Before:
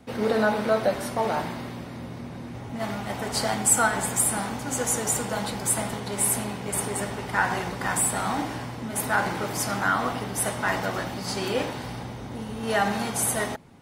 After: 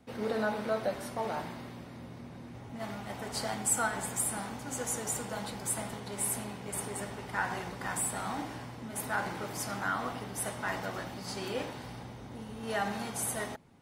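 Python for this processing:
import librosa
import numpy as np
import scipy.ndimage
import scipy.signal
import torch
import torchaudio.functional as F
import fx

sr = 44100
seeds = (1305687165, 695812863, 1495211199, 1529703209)

y = x * librosa.db_to_amplitude(-9.0)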